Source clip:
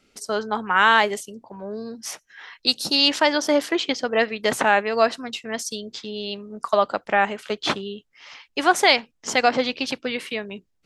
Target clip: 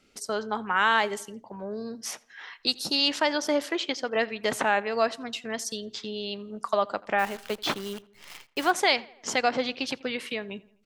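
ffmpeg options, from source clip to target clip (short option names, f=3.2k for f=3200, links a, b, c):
-filter_complex "[0:a]asettb=1/sr,asplit=3[a][b][c];[a]atrim=end=3.634[d];[b]atrim=start=3.63:end=4.16,asetpts=PTS-STARTPTS,afade=t=in:d=0.004:c=qsin,afade=t=out:st=0.526:d=0.004:c=qsin,lowshelf=f=160:g=-9.5[e];[c]atrim=start=4.156[f];[d][e]acrossfade=d=0.004:c1=hsin:c2=qsin[g];[g][f]acrossfade=d=0.004:c1=qsin:c2=hsin,asplit=2[h][i];[i]acompressor=threshold=-30dB:ratio=6,volume=0dB[j];[h][j]amix=inputs=2:normalize=0,asplit=3[k][l][m];[k]afade=t=out:st=7.18:d=0.02[n];[l]acrusher=bits=6:dc=4:mix=0:aa=0.000001,afade=t=in:st=7.18:d=0.02,afade=t=out:st=8.7:d=0.02[o];[m]afade=t=in:st=8.7:d=0.02[p];[n][o][p]amix=inputs=3:normalize=0,asplit=2[q][r];[r]adelay=84,lowpass=f=3.4k:p=1,volume=-22dB,asplit=2[s][t];[t]adelay=84,lowpass=f=3.4k:p=1,volume=0.54,asplit=2[u][v];[v]adelay=84,lowpass=f=3.4k:p=1,volume=0.54,asplit=2[w][x];[x]adelay=84,lowpass=f=3.4k:p=1,volume=0.54[y];[q][s][u][w][y]amix=inputs=5:normalize=0,volume=-7.5dB"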